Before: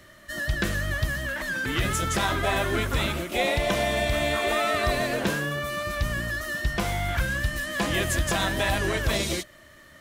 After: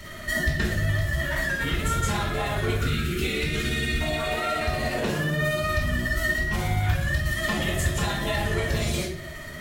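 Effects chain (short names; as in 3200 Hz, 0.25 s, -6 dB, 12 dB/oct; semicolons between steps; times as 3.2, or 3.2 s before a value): spectral gain 2.89–4.17, 490–1100 Hz -20 dB; compressor 16:1, threshold -36 dBFS, peak gain reduction 17.5 dB; tremolo 16 Hz, depth 64%; speed mistake 24 fps film run at 25 fps; reverb RT60 0.65 s, pre-delay 3 ms, DRR -6.5 dB; gain +4.5 dB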